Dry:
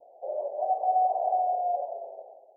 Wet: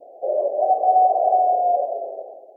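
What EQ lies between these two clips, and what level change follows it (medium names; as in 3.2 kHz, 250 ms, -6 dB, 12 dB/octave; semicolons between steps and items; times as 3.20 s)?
peaking EQ 300 Hz +12.5 dB 1.6 oct; band-stop 910 Hz, Q 5.2; +6.0 dB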